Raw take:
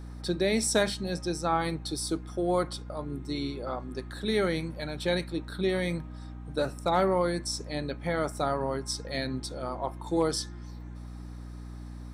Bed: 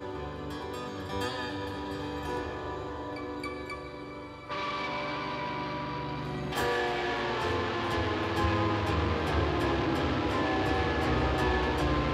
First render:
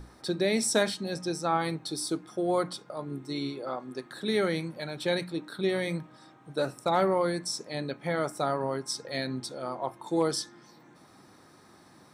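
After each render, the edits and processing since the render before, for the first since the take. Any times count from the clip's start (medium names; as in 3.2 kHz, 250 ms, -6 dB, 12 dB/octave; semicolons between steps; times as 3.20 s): hum notches 60/120/180/240/300 Hz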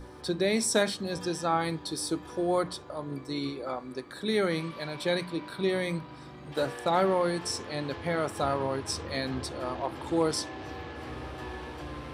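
add bed -12 dB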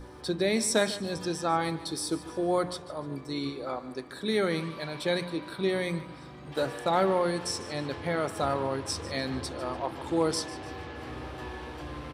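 feedback delay 148 ms, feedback 37%, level -16 dB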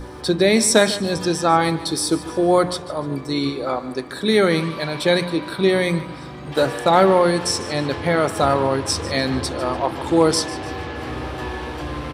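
trim +11 dB; peak limiter -2 dBFS, peak gain reduction 1 dB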